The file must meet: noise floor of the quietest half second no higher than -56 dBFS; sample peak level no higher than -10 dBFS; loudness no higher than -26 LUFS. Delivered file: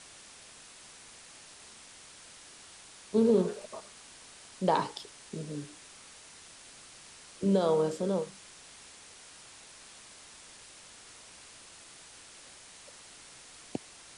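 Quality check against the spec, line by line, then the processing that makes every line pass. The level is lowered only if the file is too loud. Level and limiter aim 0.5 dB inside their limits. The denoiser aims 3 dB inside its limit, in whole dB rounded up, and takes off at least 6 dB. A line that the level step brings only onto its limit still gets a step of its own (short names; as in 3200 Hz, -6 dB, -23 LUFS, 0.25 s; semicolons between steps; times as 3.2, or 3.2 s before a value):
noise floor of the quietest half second -52 dBFS: fail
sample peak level -13.5 dBFS: OK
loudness -31.0 LUFS: OK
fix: denoiser 7 dB, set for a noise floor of -52 dBFS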